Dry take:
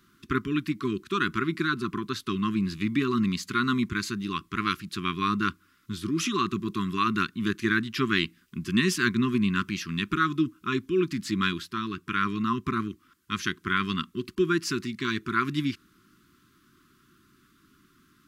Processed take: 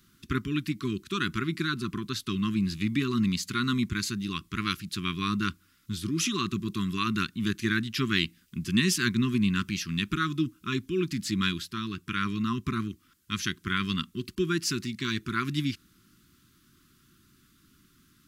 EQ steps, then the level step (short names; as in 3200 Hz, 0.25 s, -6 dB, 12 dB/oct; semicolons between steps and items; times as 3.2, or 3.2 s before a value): bell 730 Hz -13 dB 2.9 oct; +4.5 dB